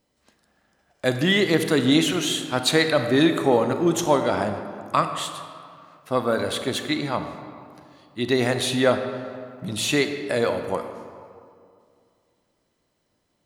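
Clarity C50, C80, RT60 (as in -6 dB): 7.5 dB, 8.5 dB, 2.3 s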